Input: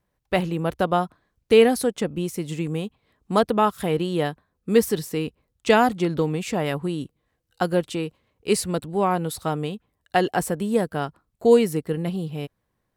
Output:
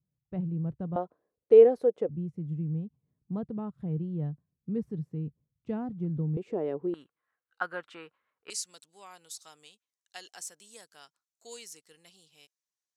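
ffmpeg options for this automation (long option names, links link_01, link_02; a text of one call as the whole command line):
ffmpeg -i in.wav -af "asetnsamples=nb_out_samples=441:pad=0,asendcmd='0.96 bandpass f 480;2.09 bandpass f 140;6.37 bandpass f 400;6.94 bandpass f 1400;8.5 bandpass f 6300',bandpass=frequency=140:width_type=q:width=3.1:csg=0" out.wav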